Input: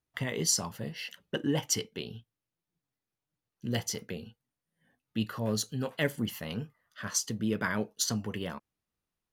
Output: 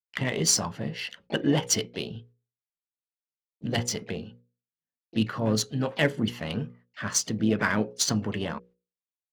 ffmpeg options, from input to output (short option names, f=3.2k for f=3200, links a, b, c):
-filter_complex "[0:a]agate=range=-37dB:threshold=-59dB:ratio=16:detection=peak,asplit=3[a][b][c];[b]asetrate=52444,aresample=44100,atempo=0.840896,volume=-14dB[d];[c]asetrate=66075,aresample=44100,atempo=0.66742,volume=-17dB[e];[a][d][e]amix=inputs=3:normalize=0,bandreject=f=60:t=h:w=6,bandreject=f=120:t=h:w=6,bandreject=f=180:t=h:w=6,bandreject=f=240:t=h:w=6,bandreject=f=300:t=h:w=6,bandreject=f=360:t=h:w=6,bandreject=f=420:t=h:w=6,bandreject=f=480:t=h:w=6,bandreject=f=540:t=h:w=6,adynamicsmooth=sensitivity=8:basefreq=4.3k,volume=6dB"